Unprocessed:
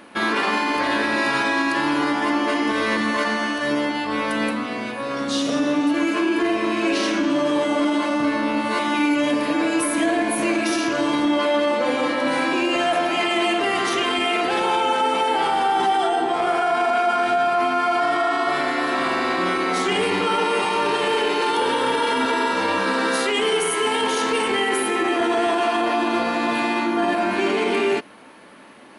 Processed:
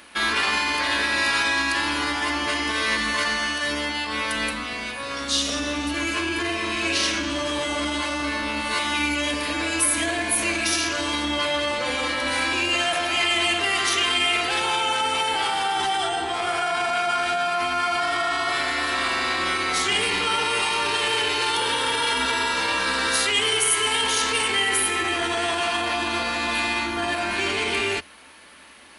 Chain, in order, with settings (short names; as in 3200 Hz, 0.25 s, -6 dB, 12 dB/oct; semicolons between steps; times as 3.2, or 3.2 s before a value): octaver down 2 oct, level -6 dB; tilt shelf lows -8.5 dB, about 1400 Hz; gain -1.5 dB